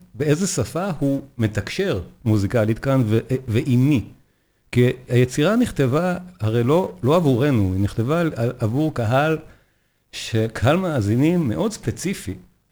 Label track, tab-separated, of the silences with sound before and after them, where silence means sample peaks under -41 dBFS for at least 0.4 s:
4.140000	4.730000	silence
9.550000	10.130000	silence